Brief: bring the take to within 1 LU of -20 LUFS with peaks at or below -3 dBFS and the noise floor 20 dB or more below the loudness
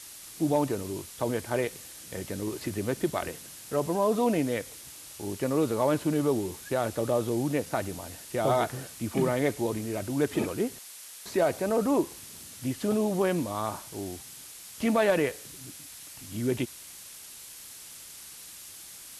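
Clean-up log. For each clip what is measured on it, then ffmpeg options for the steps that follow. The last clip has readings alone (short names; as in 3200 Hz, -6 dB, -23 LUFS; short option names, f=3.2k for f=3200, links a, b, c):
noise floor -46 dBFS; noise floor target -50 dBFS; loudness -29.5 LUFS; peak -13.5 dBFS; loudness target -20.0 LUFS
-> -af "afftdn=nr=6:nf=-46"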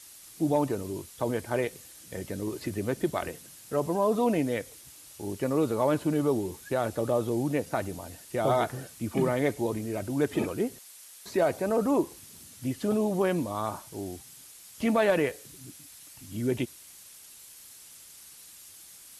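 noise floor -50 dBFS; loudness -29.5 LUFS; peak -14.0 dBFS; loudness target -20.0 LUFS
-> -af "volume=9.5dB"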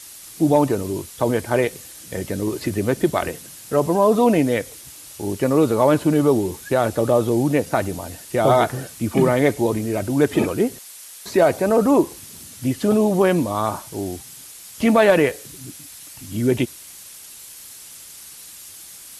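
loudness -20.0 LUFS; peak -4.5 dBFS; noise floor -41 dBFS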